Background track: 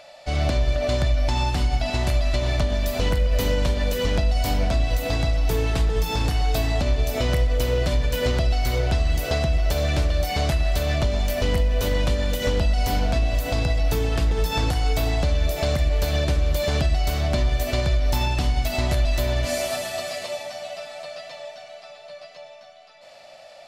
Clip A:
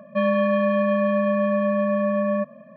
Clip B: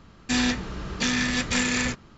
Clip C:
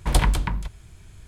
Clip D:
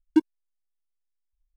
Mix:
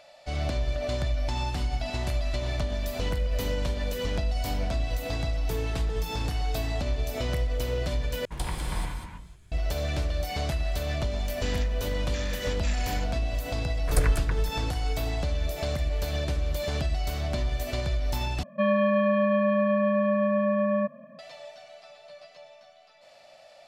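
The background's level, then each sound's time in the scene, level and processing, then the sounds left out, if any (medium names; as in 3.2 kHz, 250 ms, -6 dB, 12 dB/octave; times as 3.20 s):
background track -7 dB
8.25 s: replace with C -13.5 dB + gated-style reverb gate 460 ms flat, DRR -4 dB
11.12 s: add B -14 dB
13.82 s: add C -2.5 dB + static phaser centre 880 Hz, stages 6
18.43 s: replace with A -2.5 dB
not used: D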